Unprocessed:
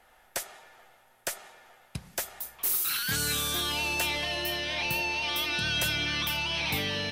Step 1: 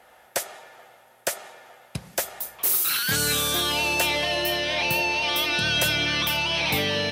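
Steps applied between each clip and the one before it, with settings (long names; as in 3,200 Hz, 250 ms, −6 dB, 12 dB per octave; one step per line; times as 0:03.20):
high-pass filter 81 Hz
parametric band 550 Hz +5 dB 0.87 octaves
level +5.5 dB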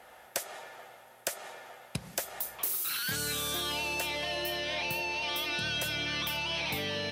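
downward compressor 10 to 1, threshold −30 dBFS, peak gain reduction 12 dB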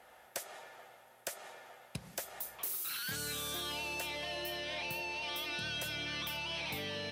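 soft clipping −21.5 dBFS, distortion −25 dB
level −5.5 dB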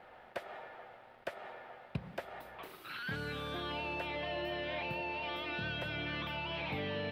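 bit-depth reduction 10 bits, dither none
high-frequency loss of the air 450 metres
level +5.5 dB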